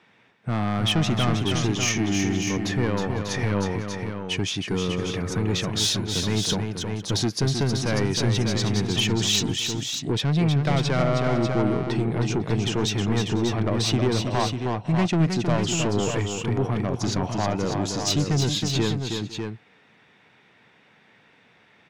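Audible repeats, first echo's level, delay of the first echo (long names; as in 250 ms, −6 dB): 3, −6.0 dB, 316 ms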